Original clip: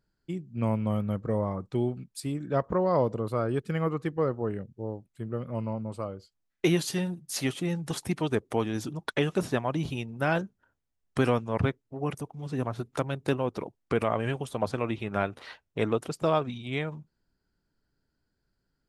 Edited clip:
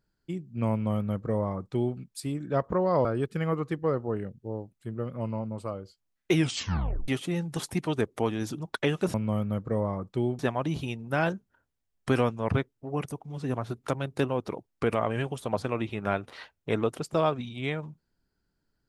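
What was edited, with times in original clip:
0.72–1.97 copy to 9.48
3.05–3.39 cut
6.68 tape stop 0.74 s

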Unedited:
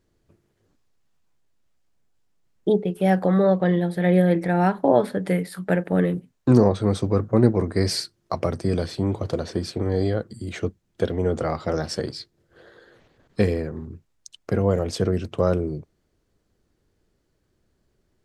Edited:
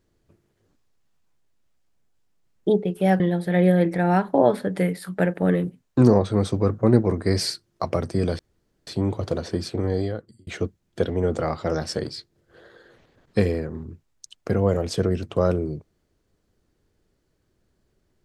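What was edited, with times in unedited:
3.2–3.7 cut
8.89 insert room tone 0.48 s
9.87–10.49 fade out

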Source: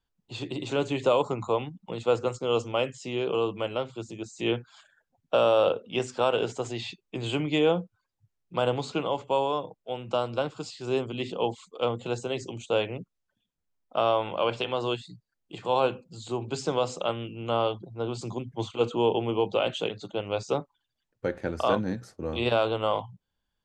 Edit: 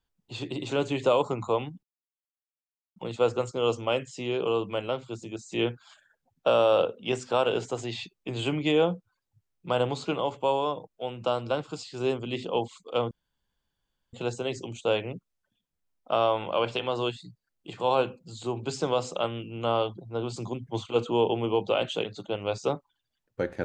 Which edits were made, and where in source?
1.83 insert silence 1.13 s
11.98 insert room tone 1.02 s

